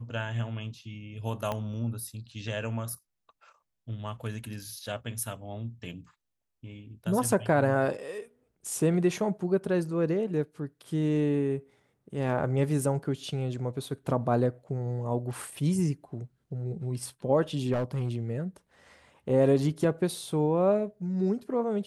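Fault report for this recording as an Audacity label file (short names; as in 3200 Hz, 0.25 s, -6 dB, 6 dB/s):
1.520000	1.520000	pop -18 dBFS
17.720000	18.170000	clipped -24.5 dBFS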